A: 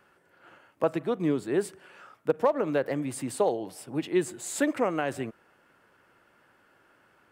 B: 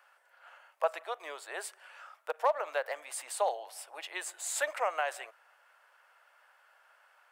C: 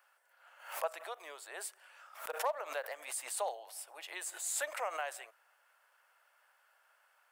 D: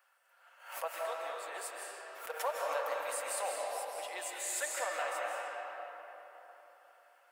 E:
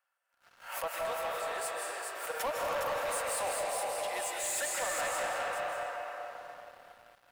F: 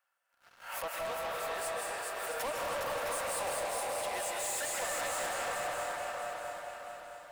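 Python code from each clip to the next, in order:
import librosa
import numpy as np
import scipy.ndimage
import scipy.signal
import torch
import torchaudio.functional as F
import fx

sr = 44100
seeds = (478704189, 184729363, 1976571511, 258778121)

y1 = scipy.signal.sosfilt(scipy.signal.butter(6, 610.0, 'highpass', fs=sr, output='sos'), x)
y2 = fx.high_shelf(y1, sr, hz=6700.0, db=10.5)
y2 = fx.pre_swell(y2, sr, db_per_s=110.0)
y2 = F.gain(torch.from_numpy(y2), -7.0).numpy()
y3 = fx.notch_comb(y2, sr, f0_hz=210.0)
y3 = fx.rev_freeverb(y3, sr, rt60_s=3.9, hf_ratio=0.55, predelay_ms=120, drr_db=-2.5)
y4 = y3 + 10.0 ** (-5.0 / 20.0) * np.pad(y3, (int(412 * sr / 1000.0), 0))[:len(y3)]
y4 = fx.leveller(y4, sr, passes=3)
y4 = F.gain(torch.from_numpy(y4), -6.0).numpy()
y5 = 10.0 ** (-34.5 / 20.0) * np.tanh(y4 / 10.0 ** (-34.5 / 20.0))
y5 = fx.echo_feedback(y5, sr, ms=664, feedback_pct=38, wet_db=-7)
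y5 = F.gain(torch.from_numpy(y5), 1.5).numpy()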